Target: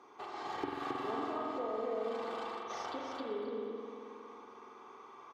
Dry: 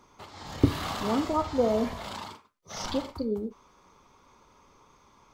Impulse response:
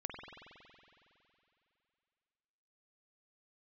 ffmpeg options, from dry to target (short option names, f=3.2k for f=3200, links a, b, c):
-filter_complex "[0:a]highpass=270,aecho=1:1:268:0.668,acompressor=threshold=-41dB:ratio=5,lowpass=f=1.2k:p=1,lowshelf=f=360:g=-7.5,aecho=1:1:2.6:0.5[a];[1:a]atrim=start_sample=2205[b];[a][b]afir=irnorm=-1:irlink=0,volume=8dB"